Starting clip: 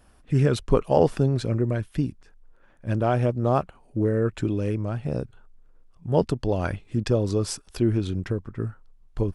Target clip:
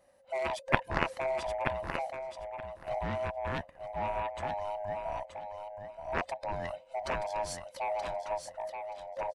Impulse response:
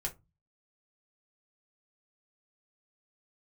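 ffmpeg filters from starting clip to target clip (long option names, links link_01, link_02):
-af "afftfilt=real='real(if(lt(b,1008),b+24*(1-2*mod(floor(b/24),2)),b),0)':imag='imag(if(lt(b,1008),b+24*(1-2*mod(floor(b/24),2)),b),0)':win_size=2048:overlap=0.75,aeval=exprs='0.596*(cos(1*acos(clip(val(0)/0.596,-1,1)))-cos(1*PI/2))+0.266*(cos(3*acos(clip(val(0)/0.596,-1,1)))-cos(3*PI/2))':channel_layout=same,aecho=1:1:927|1854|2781:0.473|0.0804|0.0137"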